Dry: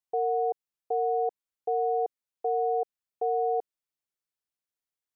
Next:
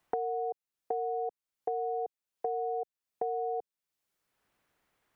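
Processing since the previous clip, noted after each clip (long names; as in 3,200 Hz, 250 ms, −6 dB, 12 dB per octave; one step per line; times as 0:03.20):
multiband upward and downward compressor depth 100%
level −6.5 dB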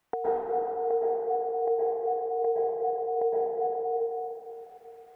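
dense smooth reverb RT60 3.7 s, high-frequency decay 0.6×, pre-delay 105 ms, DRR −9 dB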